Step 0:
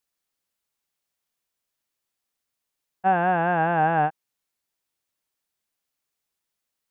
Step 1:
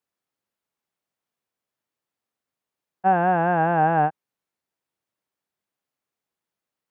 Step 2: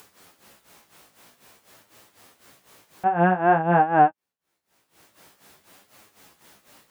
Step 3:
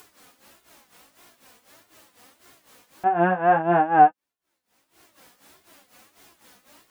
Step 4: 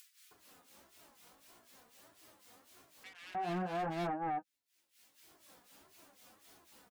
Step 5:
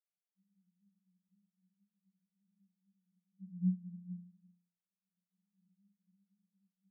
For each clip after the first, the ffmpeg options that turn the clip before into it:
ffmpeg -i in.wav -af "highpass=95,highshelf=frequency=2300:gain=-12,volume=3dB" out.wav
ffmpeg -i in.wav -af "tremolo=f=4:d=0.82,flanger=delay=9.4:depth=9.4:regen=15:speed=0.5:shape=sinusoidal,acompressor=mode=upward:threshold=-36dB:ratio=2.5,volume=8dB" out.wav
ffmpeg -i in.wav -af "flanger=delay=2.8:depth=1.3:regen=30:speed=1.6:shape=sinusoidal,volume=3.5dB" out.wav
ffmpeg -i in.wav -filter_complex "[0:a]acrossover=split=360|3000[link_01][link_02][link_03];[link_02]acompressor=threshold=-31dB:ratio=2[link_04];[link_01][link_04][link_03]amix=inputs=3:normalize=0,asoftclip=type=hard:threshold=-26.5dB,acrossover=split=1900[link_05][link_06];[link_05]adelay=310[link_07];[link_07][link_06]amix=inputs=2:normalize=0,volume=-7dB" out.wav
ffmpeg -i in.wav -af "asuperpass=centerf=190:order=20:qfactor=6.3,volume=8dB" out.wav

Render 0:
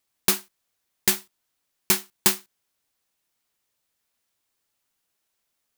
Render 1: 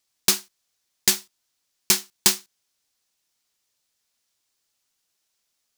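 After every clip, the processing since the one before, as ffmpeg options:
ffmpeg -i in.wav -af "equalizer=frequency=5500:width_type=o:width=1.6:gain=8.5,volume=-2dB" out.wav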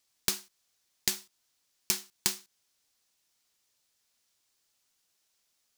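ffmpeg -i in.wav -af "acompressor=threshold=-26dB:ratio=8" out.wav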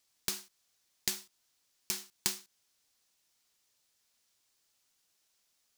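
ffmpeg -i in.wav -af "alimiter=limit=-11dB:level=0:latency=1:release=119" out.wav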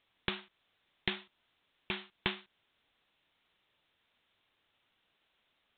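ffmpeg -i in.wav -af "aresample=8000,aresample=44100,volume=7dB" out.wav

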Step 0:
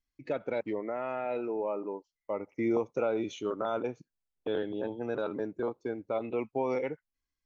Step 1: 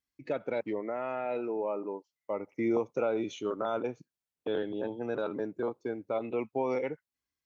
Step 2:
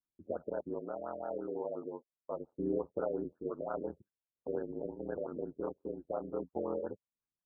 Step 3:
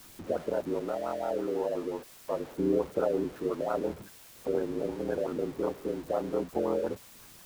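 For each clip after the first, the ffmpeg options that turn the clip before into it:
ffmpeg -i in.wav -af "highpass=82" out.wav
ffmpeg -i in.wav -af "aeval=exprs='val(0)*sin(2*PI*43*n/s)':channel_layout=same,afftfilt=real='re*lt(b*sr/1024,620*pow(1800/620,0.5+0.5*sin(2*PI*5.7*pts/sr)))':imag='im*lt(b*sr/1024,620*pow(1800/620,0.5+0.5*sin(2*PI*5.7*pts/sr)))':win_size=1024:overlap=0.75,volume=-2.5dB" out.wav
ffmpeg -i in.wav -af "aeval=exprs='val(0)+0.5*0.00422*sgn(val(0))':channel_layout=same,volume=6.5dB" out.wav

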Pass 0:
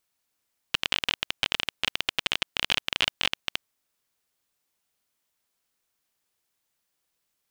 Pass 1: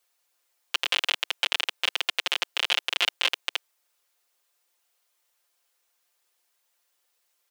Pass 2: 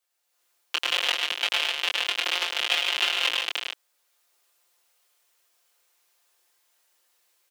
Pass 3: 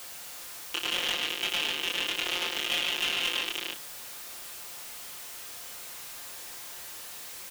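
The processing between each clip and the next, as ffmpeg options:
ffmpeg -i in.wav -filter_complex "[0:a]highpass=frequency=400:width=0.5412,highpass=frequency=400:width=1.3066,aecho=1:1:5.7:0.78,asplit=2[link_01][link_02];[link_02]alimiter=limit=-15.5dB:level=0:latency=1:release=24,volume=2dB[link_03];[link_01][link_03]amix=inputs=2:normalize=0,volume=-4dB" out.wav
ffmpeg -i in.wav -af "dynaudnorm=framelen=220:gausssize=3:maxgain=9.5dB,flanger=delay=18.5:depth=6.5:speed=0.72,aecho=1:1:105|145.8:0.562|0.501,volume=-3dB" out.wav
ffmpeg -i in.wav -filter_complex "[0:a]aeval=exprs='val(0)+0.5*0.0224*sgn(val(0))':channel_layout=same,asplit=2[link_01][link_02];[link_02]adelay=34,volume=-10dB[link_03];[link_01][link_03]amix=inputs=2:normalize=0,asoftclip=type=hard:threshold=-16.5dB,volume=-4dB" out.wav

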